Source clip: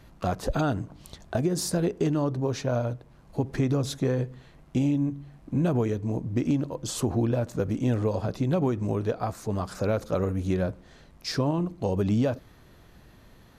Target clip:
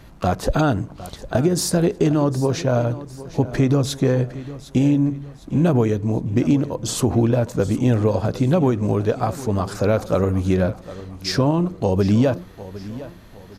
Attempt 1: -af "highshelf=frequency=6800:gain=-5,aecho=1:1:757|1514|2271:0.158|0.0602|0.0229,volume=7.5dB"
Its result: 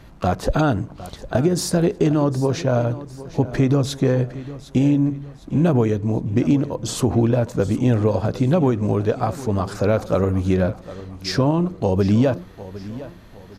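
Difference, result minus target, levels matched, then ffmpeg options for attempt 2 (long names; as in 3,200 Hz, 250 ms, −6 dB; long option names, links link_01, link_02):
8,000 Hz band −2.5 dB
-af "aecho=1:1:757|1514|2271:0.158|0.0602|0.0229,volume=7.5dB"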